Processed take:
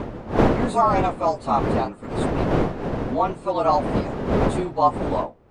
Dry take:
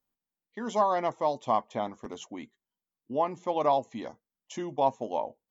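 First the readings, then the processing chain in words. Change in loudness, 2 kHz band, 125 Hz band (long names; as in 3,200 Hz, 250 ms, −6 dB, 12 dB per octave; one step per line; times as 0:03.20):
+7.5 dB, +12.5 dB, +20.5 dB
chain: partials spread apart or drawn together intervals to 108%
wind on the microphone 490 Hz −33 dBFS
level +8.5 dB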